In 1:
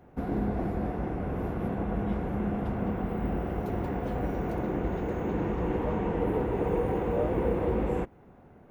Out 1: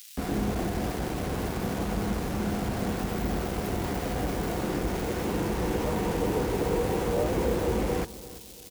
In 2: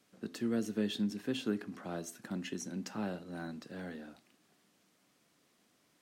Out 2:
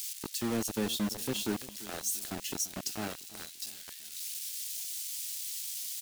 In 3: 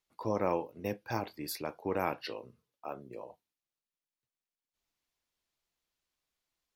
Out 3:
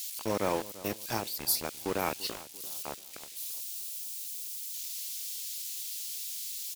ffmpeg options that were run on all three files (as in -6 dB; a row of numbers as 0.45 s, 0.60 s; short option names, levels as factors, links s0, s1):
-filter_complex "[0:a]aeval=exprs='val(0)+0.5*0.0119*sgn(val(0))':c=same,highshelf=f=4600:g=12,acrossover=split=2600[s0][s1];[s0]aeval=exprs='val(0)*gte(abs(val(0)),0.0266)':c=same[s2];[s1]acompressor=mode=upward:threshold=0.002:ratio=2.5[s3];[s2][s3]amix=inputs=2:normalize=0,asplit=2[s4][s5];[s5]adelay=341,lowpass=f=2000:p=1,volume=0.141,asplit=2[s6][s7];[s7]adelay=341,lowpass=f=2000:p=1,volume=0.43,asplit=2[s8][s9];[s9]adelay=341,lowpass=f=2000:p=1,volume=0.43,asplit=2[s10][s11];[s11]adelay=341,lowpass=f=2000:p=1,volume=0.43[s12];[s4][s6][s8][s10][s12]amix=inputs=5:normalize=0"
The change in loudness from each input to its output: +1.0 LU, +3.5 LU, +2.5 LU